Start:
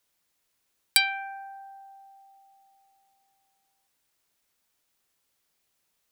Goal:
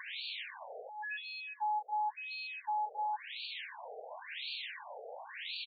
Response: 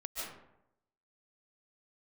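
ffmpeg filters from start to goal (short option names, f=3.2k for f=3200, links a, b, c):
-filter_complex "[0:a]aeval=exprs='val(0)+0.5*0.0473*sgn(val(0))':c=same,asuperstop=centerf=1200:order=4:qfactor=3,asplit=2[a][b];[b]asplit=3[c][d][e];[c]adelay=133,afreqshift=77,volume=-22.5dB[f];[d]adelay=266,afreqshift=154,volume=-30dB[g];[e]adelay=399,afreqshift=231,volume=-37.6dB[h];[f][g][h]amix=inputs=3:normalize=0[i];[a][i]amix=inputs=2:normalize=0,acompressor=threshold=-35dB:ratio=10,lowshelf=f=500:g=11,asetrate=47628,aresample=44100,equalizer=f=4.4k:w=0.65:g=3.5,afftfilt=real='re*between(b*sr/1024,570*pow(3300/570,0.5+0.5*sin(2*PI*0.94*pts/sr))/1.41,570*pow(3300/570,0.5+0.5*sin(2*PI*0.94*pts/sr))*1.41)':imag='im*between(b*sr/1024,570*pow(3300/570,0.5+0.5*sin(2*PI*0.94*pts/sr))/1.41,570*pow(3300/570,0.5+0.5*sin(2*PI*0.94*pts/sr))*1.41)':win_size=1024:overlap=0.75,volume=2dB"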